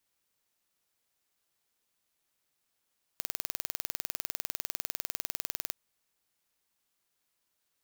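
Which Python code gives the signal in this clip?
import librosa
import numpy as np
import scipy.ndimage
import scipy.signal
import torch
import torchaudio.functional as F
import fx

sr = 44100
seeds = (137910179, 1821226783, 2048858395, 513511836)

y = 10.0 ** (-5.0 / 20.0) * (np.mod(np.arange(round(2.53 * sr)), round(sr / 20.0)) == 0)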